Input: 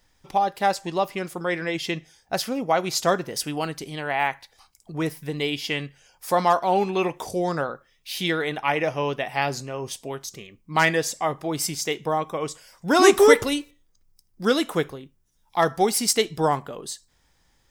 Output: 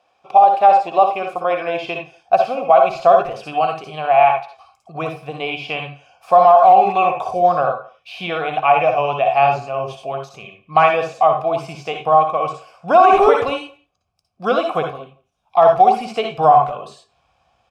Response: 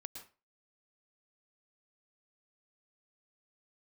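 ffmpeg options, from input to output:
-filter_complex "[0:a]highpass=68,equalizer=f=460:w=1.3:g=2.5[a];[1:a]atrim=start_sample=2205,asetrate=83790,aresample=44100[b];[a][b]afir=irnorm=-1:irlink=0,acrossover=split=3100[c][d];[d]acompressor=threshold=-48dB:ratio=4:attack=1:release=60[e];[c][e]amix=inputs=2:normalize=0,asplit=3[f][g][h];[f]bandpass=f=730:t=q:w=8,volume=0dB[i];[g]bandpass=f=1.09k:t=q:w=8,volume=-6dB[j];[h]bandpass=f=2.44k:t=q:w=8,volume=-9dB[k];[i][j][k]amix=inputs=3:normalize=0,asplit=2[l][m];[m]adelay=170,highpass=300,lowpass=3.4k,asoftclip=type=hard:threshold=-30.5dB,volume=-23dB[n];[l][n]amix=inputs=2:normalize=0,asubboost=boost=9.5:cutoff=110,alimiter=level_in=30.5dB:limit=-1dB:release=50:level=0:latency=1,volume=-1dB"

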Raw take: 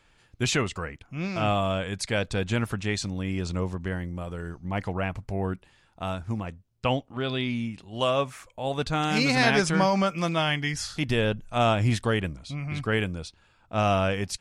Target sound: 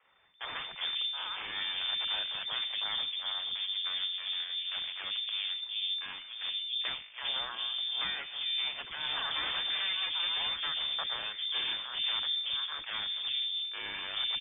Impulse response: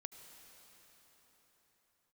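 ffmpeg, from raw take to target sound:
-filter_complex "[0:a]bandreject=f=50.18:t=h:w=4,bandreject=f=100.36:t=h:w=4,bandreject=f=150.54:t=h:w=4,bandreject=f=200.72:t=h:w=4,bandreject=f=250.9:t=h:w=4,bandreject=f=301.08:t=h:w=4,bandreject=f=351.26:t=h:w=4,bandreject=f=401.44:t=h:w=4,bandreject=f=451.62:t=h:w=4,bandreject=f=501.8:t=h:w=4,bandreject=f=551.98:t=h:w=4,bandreject=f=602.16:t=h:w=4,bandreject=f=652.34:t=h:w=4,bandreject=f=702.52:t=h:w=4,bandreject=f=752.7:t=h:w=4,bandreject=f=802.88:t=h:w=4,bandreject=f=853.06:t=h:w=4,bandreject=f=903.24:t=h:w=4,bandreject=f=953.42:t=h:w=4,bandreject=f=1.0036k:t=h:w=4,bandreject=f=1.05378k:t=h:w=4,bandreject=f=1.10396k:t=h:w=4,bandreject=f=1.15414k:t=h:w=4,bandreject=f=1.20432k:t=h:w=4,bandreject=f=1.2545k:t=h:w=4,bandreject=f=1.30468k:t=h:w=4,bandreject=f=1.35486k:t=h:w=4,bandreject=f=1.40504k:t=h:w=4,bandreject=f=1.45522k:t=h:w=4,bandreject=f=1.5054k:t=h:w=4,bandreject=f=1.55558k:t=h:w=4,bandreject=f=1.60576k:t=h:w=4,bandreject=f=1.65594k:t=h:w=4,bandreject=f=1.70612k:t=h:w=4,acompressor=threshold=-30dB:ratio=2.5,aresample=16000,aeval=exprs='abs(val(0))':c=same,aresample=44100,afreqshift=-41,asplit=2[a][b];[b]aeval=exprs='0.0316*(abs(mod(val(0)/0.0316+3,4)-2)-1)':c=same,volume=-11dB[c];[a][c]amix=inputs=2:normalize=0,lowpass=f=3.1k:t=q:w=0.5098,lowpass=f=3.1k:t=q:w=0.6013,lowpass=f=3.1k:t=q:w=0.9,lowpass=f=3.1k:t=q:w=2.563,afreqshift=-3600,acrossover=split=360|2700[d][e][f];[d]adelay=30[g];[f]adelay=400[h];[g][e][h]amix=inputs=3:normalize=0"

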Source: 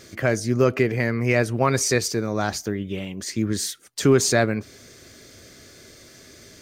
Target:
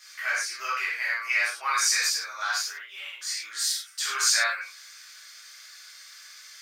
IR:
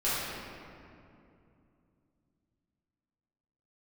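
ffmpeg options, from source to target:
-filter_complex "[0:a]highpass=f=1.2k:w=0.5412,highpass=f=1.2k:w=1.3066,equalizer=f=4.9k:w=3.8:g=2.5[a];[1:a]atrim=start_sample=2205,afade=t=out:st=0.17:d=0.01,atrim=end_sample=7938[b];[a][b]afir=irnorm=-1:irlink=0,volume=-5.5dB"

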